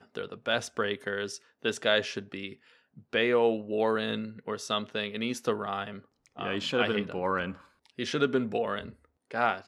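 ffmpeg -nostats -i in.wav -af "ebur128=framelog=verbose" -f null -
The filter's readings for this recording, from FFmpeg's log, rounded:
Integrated loudness:
  I:         -30.4 LUFS
  Threshold: -41.0 LUFS
Loudness range:
  LRA:         2.6 LU
  Threshold: -50.8 LUFS
  LRA low:   -32.2 LUFS
  LRA high:  -29.5 LUFS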